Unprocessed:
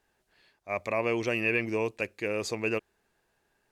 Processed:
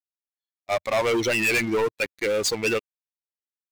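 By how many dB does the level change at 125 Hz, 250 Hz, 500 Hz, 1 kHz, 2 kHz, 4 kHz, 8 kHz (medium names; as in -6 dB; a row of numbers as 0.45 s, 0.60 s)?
+2.5 dB, +4.5 dB, +6.5 dB, +7.0 dB, +6.0 dB, +12.5 dB, +14.0 dB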